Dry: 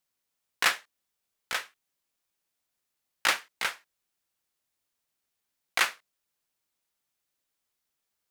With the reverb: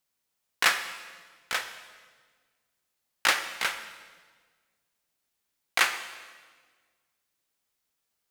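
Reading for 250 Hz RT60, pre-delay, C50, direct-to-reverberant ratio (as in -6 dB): 2.0 s, 15 ms, 9.5 dB, 8.0 dB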